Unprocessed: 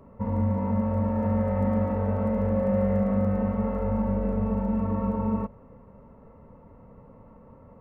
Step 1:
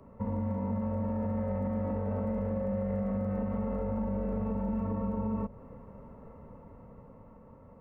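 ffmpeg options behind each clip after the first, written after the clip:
-filter_complex "[0:a]dynaudnorm=f=230:g=11:m=1.58,alimiter=limit=0.133:level=0:latency=1:release=37,acrossover=split=150|660[s0][s1][s2];[s0]acompressor=threshold=0.02:ratio=4[s3];[s1]acompressor=threshold=0.0316:ratio=4[s4];[s2]acompressor=threshold=0.00708:ratio=4[s5];[s3][s4][s5]amix=inputs=3:normalize=0,volume=0.75"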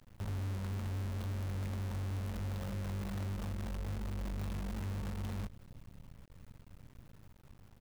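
-af "firequalizer=gain_entry='entry(140,0);entry(250,-20);entry(1700,-16);entry(2900,3)':delay=0.05:min_phase=1,acrusher=bits=8:dc=4:mix=0:aa=0.000001,asoftclip=type=tanh:threshold=0.0133,volume=1.5"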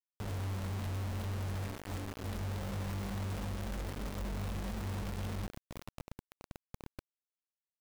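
-af "alimiter=level_in=6.68:limit=0.0631:level=0:latency=1:release=13,volume=0.15,flanger=delay=4.9:depth=4.2:regen=-85:speed=0.51:shape=sinusoidal,acrusher=bits=7:mix=0:aa=0.000001,volume=2.37"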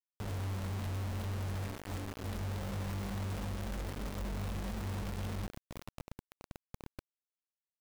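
-af anull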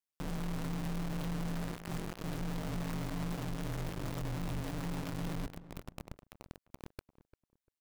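-filter_complex "[0:a]aeval=exprs='val(0)*sin(2*PI*76*n/s)':c=same,asplit=2[s0][s1];[s1]adelay=346,lowpass=f=1300:p=1,volume=0.168,asplit=2[s2][s3];[s3]adelay=346,lowpass=f=1300:p=1,volume=0.24[s4];[s0][s2][s4]amix=inputs=3:normalize=0,volume=1.5"

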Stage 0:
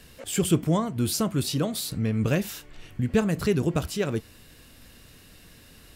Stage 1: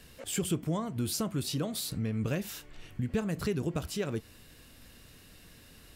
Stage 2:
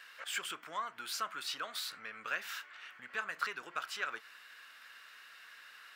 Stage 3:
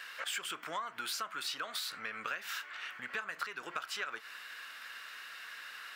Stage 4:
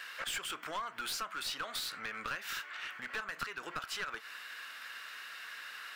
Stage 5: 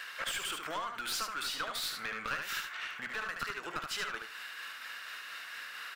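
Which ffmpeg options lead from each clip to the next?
-af "acompressor=threshold=0.0447:ratio=2,volume=0.668"
-filter_complex "[0:a]asplit=2[s0][s1];[s1]asoftclip=type=tanh:threshold=0.0168,volume=0.398[s2];[s0][s2]amix=inputs=2:normalize=0,highpass=f=1400:t=q:w=2.7,equalizer=f=11000:t=o:w=1.7:g=-14.5,volume=1.12"
-af "acompressor=threshold=0.00708:ratio=6,volume=2.37"
-af "aeval=exprs='clip(val(0),-1,0.015)':c=same,volume=1.12"
-filter_complex "[0:a]tremolo=f=4.3:d=0.3,asplit=2[s0][s1];[s1]aecho=0:1:74|148|222:0.562|0.09|0.0144[s2];[s0][s2]amix=inputs=2:normalize=0,volume=1.33"

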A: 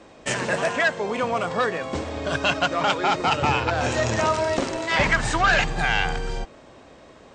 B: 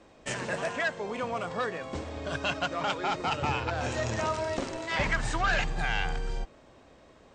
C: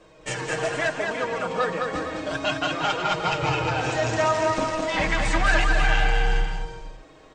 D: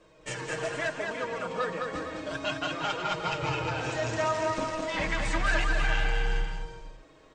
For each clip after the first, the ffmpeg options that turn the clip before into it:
-af "lowshelf=f=72:g=7,volume=0.376"
-af "aecho=1:1:6.4:0.61,flanger=delay=1.8:depth=2.2:regen=-37:speed=0.31:shape=triangular,aecho=1:1:210|357|459.9|531.9|582.4:0.631|0.398|0.251|0.158|0.1,volume=2.11"
-af "bandreject=f=760:w=12,volume=0.501"

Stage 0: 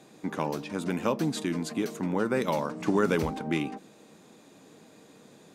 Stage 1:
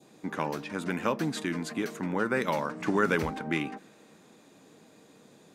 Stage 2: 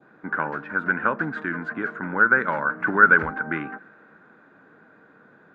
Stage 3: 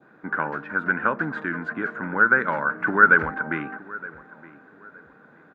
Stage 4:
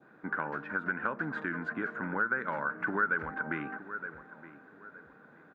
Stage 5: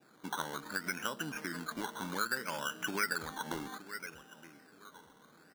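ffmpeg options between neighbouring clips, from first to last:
-af "adynamicequalizer=threshold=0.00398:dfrequency=1700:dqfactor=1.2:tfrequency=1700:tqfactor=1.2:attack=5:release=100:ratio=0.375:range=4:mode=boostabove:tftype=bell,volume=0.75"
-af "lowpass=f=1500:t=q:w=8.8"
-filter_complex "[0:a]asplit=2[s0][s1];[s1]adelay=918,lowpass=f=1900:p=1,volume=0.119,asplit=2[s2][s3];[s3]adelay=918,lowpass=f=1900:p=1,volume=0.32,asplit=2[s4][s5];[s5]adelay=918,lowpass=f=1900:p=1,volume=0.32[s6];[s0][s2][s4][s6]amix=inputs=4:normalize=0"
-af "acompressor=threshold=0.0501:ratio=2.5,volume=0.596"
-af "acrusher=samples=14:mix=1:aa=0.000001:lfo=1:lforange=8.4:lforate=0.64,volume=0.596"

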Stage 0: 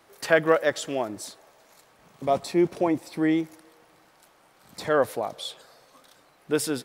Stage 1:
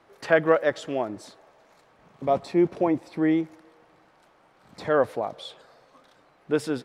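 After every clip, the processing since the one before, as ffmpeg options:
-af "aemphasis=mode=reproduction:type=75fm"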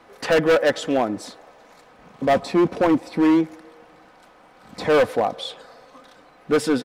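-af "aecho=1:1:4:0.39,asoftclip=type=hard:threshold=0.0891,volume=2.51"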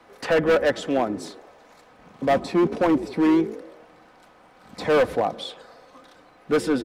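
-filter_complex "[0:a]acrossover=split=260|980|2900[s0][s1][s2][s3];[s0]asplit=7[s4][s5][s6][s7][s8][s9][s10];[s5]adelay=80,afreqshift=55,volume=0.631[s11];[s6]adelay=160,afreqshift=110,volume=0.316[s12];[s7]adelay=240,afreqshift=165,volume=0.158[s13];[s8]adelay=320,afreqshift=220,volume=0.0785[s14];[s9]adelay=400,afreqshift=275,volume=0.0394[s15];[s10]adelay=480,afreqshift=330,volume=0.0197[s16];[s4][s11][s12][s13][s14][s15][s16]amix=inputs=7:normalize=0[s17];[s3]alimiter=level_in=1.19:limit=0.0631:level=0:latency=1:release=458,volume=0.841[s18];[s17][s1][s2][s18]amix=inputs=4:normalize=0,volume=0.794"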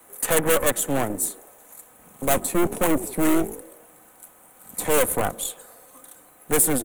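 -filter_complex "[0:a]aeval=exprs='0.355*(cos(1*acos(clip(val(0)/0.355,-1,1)))-cos(1*PI/2))+0.0794*(cos(6*acos(clip(val(0)/0.355,-1,1)))-cos(6*PI/2))':c=same,acrossover=split=190[s0][s1];[s1]aexciter=amount=13.3:drive=9.6:freq=7800[s2];[s0][s2]amix=inputs=2:normalize=0,volume=0.708"

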